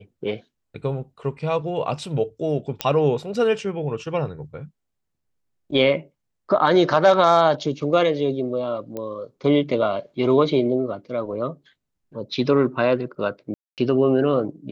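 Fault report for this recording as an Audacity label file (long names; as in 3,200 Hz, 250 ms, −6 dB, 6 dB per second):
2.810000	2.810000	click −6 dBFS
8.970000	8.970000	click −18 dBFS
13.540000	13.780000	drop-out 238 ms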